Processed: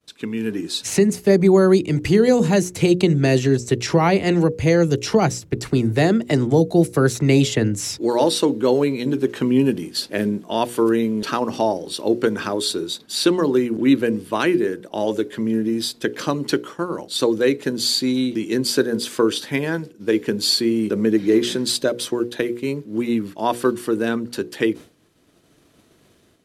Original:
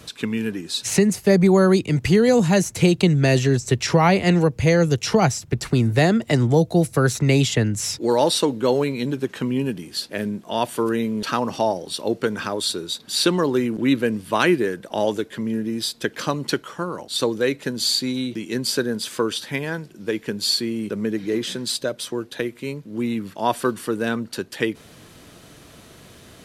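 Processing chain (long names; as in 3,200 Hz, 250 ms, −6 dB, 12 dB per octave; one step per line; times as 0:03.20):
downward expander −34 dBFS
automatic gain control
parametric band 330 Hz +6.5 dB 1 octave
mains-hum notches 60/120/180/240/300/360/420/480/540 Hz
level −6 dB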